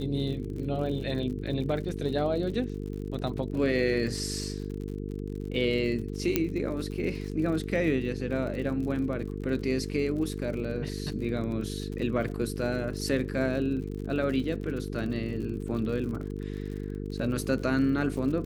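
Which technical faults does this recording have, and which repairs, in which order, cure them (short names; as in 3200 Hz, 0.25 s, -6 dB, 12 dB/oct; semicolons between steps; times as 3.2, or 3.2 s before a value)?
buzz 50 Hz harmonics 9 -35 dBFS
crackle 58/s -37 dBFS
6.36 pop -9 dBFS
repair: de-click; de-hum 50 Hz, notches 9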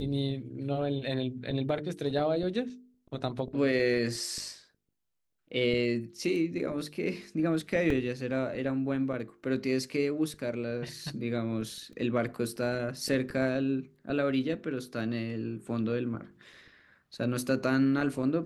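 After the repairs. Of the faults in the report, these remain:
6.36 pop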